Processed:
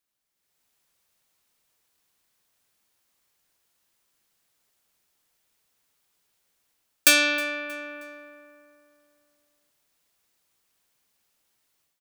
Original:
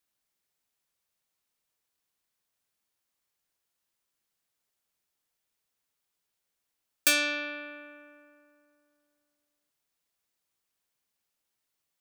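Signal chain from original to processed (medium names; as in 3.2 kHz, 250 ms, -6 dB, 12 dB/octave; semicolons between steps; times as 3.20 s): level rider gain up to 11 dB; on a send: feedback delay 315 ms, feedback 40%, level -23 dB; on the sum: trim -1 dB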